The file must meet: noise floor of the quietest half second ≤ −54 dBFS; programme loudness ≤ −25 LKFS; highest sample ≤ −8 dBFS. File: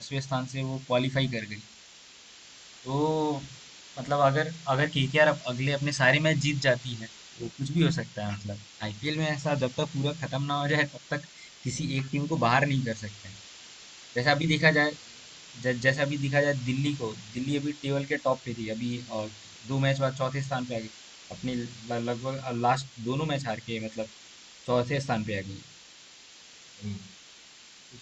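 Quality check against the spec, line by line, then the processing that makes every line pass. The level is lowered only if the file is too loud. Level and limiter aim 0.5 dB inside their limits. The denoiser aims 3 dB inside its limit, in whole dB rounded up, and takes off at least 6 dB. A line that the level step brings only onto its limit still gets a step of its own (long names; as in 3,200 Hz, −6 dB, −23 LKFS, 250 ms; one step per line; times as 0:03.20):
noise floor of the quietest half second −52 dBFS: out of spec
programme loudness −28.5 LKFS: in spec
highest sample −6.5 dBFS: out of spec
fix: broadband denoise 6 dB, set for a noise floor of −52 dBFS
brickwall limiter −8.5 dBFS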